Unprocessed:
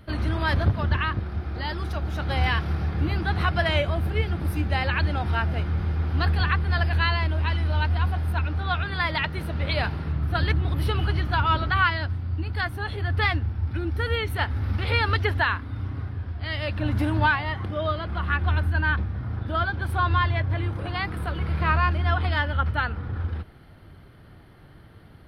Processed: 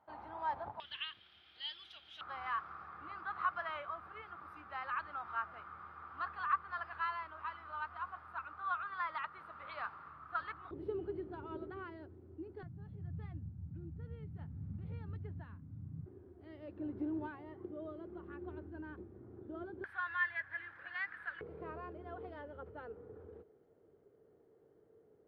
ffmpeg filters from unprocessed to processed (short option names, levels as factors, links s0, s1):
-af "asetnsamples=n=441:p=0,asendcmd='0.8 bandpass f 3200;2.21 bandpass f 1200;10.71 bandpass f 380;12.63 bandpass f 160;16.06 bandpass f 370;19.84 bandpass f 1700;21.41 bandpass f 440',bandpass=f=860:t=q:w=8.4:csg=0"